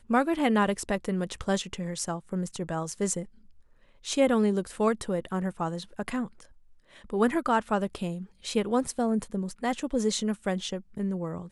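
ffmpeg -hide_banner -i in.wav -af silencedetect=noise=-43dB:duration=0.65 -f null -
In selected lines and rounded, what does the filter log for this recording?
silence_start: 3.27
silence_end: 4.05 | silence_duration: 0.78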